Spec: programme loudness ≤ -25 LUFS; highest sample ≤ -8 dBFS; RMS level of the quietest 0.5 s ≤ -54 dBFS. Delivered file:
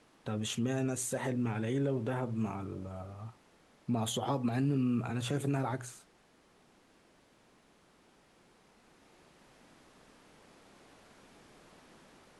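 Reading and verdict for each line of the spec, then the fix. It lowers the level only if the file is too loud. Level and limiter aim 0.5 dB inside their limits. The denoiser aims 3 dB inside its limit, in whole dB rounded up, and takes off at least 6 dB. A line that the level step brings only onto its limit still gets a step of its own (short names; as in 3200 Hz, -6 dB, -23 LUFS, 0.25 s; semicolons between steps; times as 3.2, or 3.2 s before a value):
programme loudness -34.5 LUFS: OK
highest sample -20.5 dBFS: OK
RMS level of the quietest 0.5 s -65 dBFS: OK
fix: none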